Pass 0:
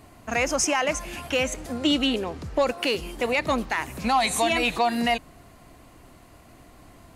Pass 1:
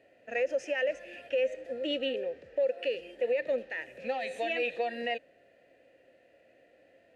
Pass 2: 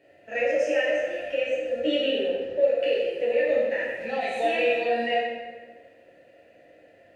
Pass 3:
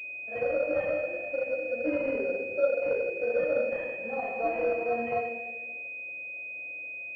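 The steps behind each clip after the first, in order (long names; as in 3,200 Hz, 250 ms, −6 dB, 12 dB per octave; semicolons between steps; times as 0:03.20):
formant filter e; harmonic and percussive parts rebalanced harmonic +7 dB; brickwall limiter −19.5 dBFS, peak gain reduction 8.5 dB; level −2 dB
dense smooth reverb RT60 1.5 s, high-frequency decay 0.65×, DRR −6.5 dB
switching amplifier with a slow clock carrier 2,500 Hz; level −4 dB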